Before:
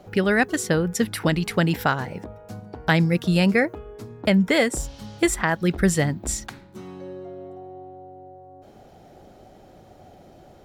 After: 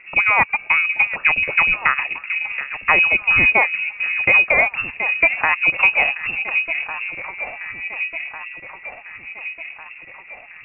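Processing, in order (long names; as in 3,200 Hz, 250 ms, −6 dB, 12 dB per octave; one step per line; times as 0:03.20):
delay that swaps between a low-pass and a high-pass 725 ms, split 1,000 Hz, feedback 74%, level −8 dB
transient designer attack 0 dB, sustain −5 dB
voice inversion scrambler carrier 2,700 Hz
level +4 dB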